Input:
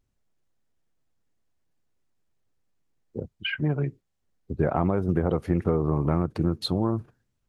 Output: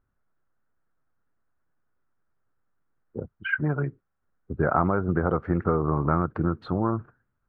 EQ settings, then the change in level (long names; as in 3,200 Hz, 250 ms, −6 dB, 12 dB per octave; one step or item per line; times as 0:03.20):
low-pass with resonance 1,400 Hz, resonance Q 4.1
−1.0 dB